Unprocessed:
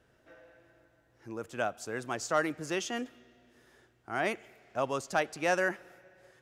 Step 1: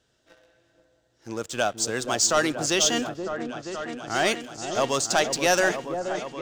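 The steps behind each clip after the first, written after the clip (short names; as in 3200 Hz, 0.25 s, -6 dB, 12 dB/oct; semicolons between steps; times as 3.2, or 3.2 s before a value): band shelf 5100 Hz +12 dB; sample leveller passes 2; on a send: repeats that get brighter 0.477 s, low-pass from 750 Hz, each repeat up 1 oct, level -6 dB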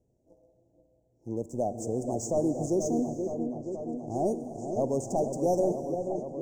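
inverse Chebyshev band-stop 1300–4100 Hz, stop band 40 dB; tilt shelf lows +8.5 dB, about 840 Hz; non-linear reverb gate 0.49 s flat, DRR 11 dB; gain -6 dB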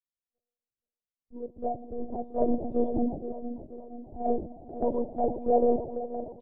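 monotone LPC vocoder at 8 kHz 240 Hz; bands offset in time highs, lows 40 ms, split 1600 Hz; three-band expander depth 100%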